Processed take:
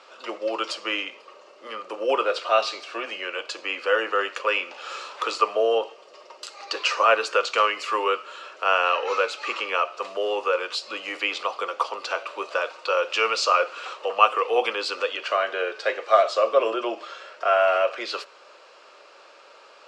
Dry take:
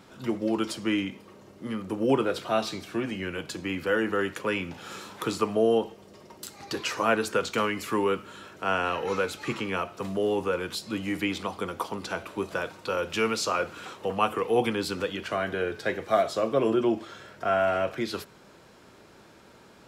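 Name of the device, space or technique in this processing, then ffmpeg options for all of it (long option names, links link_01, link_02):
phone speaker on a table: -af "highpass=frequency=450:width=0.5412,highpass=frequency=450:width=1.3066,equalizer=frequency=560:width_type=q:width=4:gain=7,equalizer=frequency=1200:width_type=q:width=4:gain=9,equalizer=frequency=2700:width_type=q:width=4:gain=9,equalizer=frequency=4600:width_type=q:width=4:gain=6,lowpass=frequency=7500:width=0.5412,lowpass=frequency=7500:width=1.3066,volume=1.5dB"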